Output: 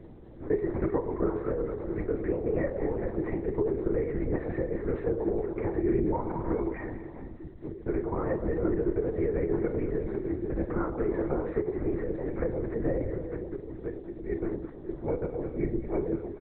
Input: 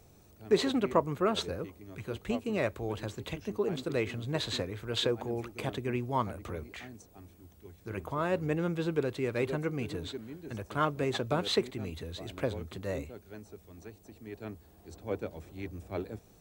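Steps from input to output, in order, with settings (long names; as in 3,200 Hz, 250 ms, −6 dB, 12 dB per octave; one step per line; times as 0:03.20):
comb filter 2.2 ms, depth 65%
delay that swaps between a low-pass and a high-pass 104 ms, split 940 Hz, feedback 69%, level −9 dB
downward compressor 6 to 1, threshold −34 dBFS, peak gain reduction 17 dB
elliptic low-pass filter 2,000 Hz, stop band 40 dB
background noise violet −67 dBFS
parametric band 1,300 Hz −8.5 dB 1.5 octaves
flutter between parallel walls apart 7 metres, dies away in 0.28 s
linear-prediction vocoder at 8 kHz whisper
parametric band 330 Hz +10 dB 0.2 octaves
level +9 dB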